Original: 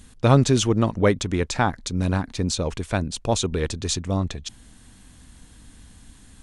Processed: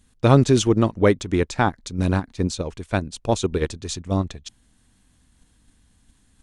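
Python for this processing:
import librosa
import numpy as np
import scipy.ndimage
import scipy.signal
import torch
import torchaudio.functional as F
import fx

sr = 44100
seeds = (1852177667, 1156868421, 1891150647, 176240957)

p1 = fx.dynamic_eq(x, sr, hz=350.0, q=2.3, threshold_db=-31.0, ratio=4.0, max_db=4)
p2 = fx.level_steps(p1, sr, step_db=11)
p3 = p1 + (p2 * 10.0 ** (2.5 / 20.0))
p4 = fx.upward_expand(p3, sr, threshold_db=-35.0, expansion=1.5)
y = p4 * 10.0 ** (-2.0 / 20.0)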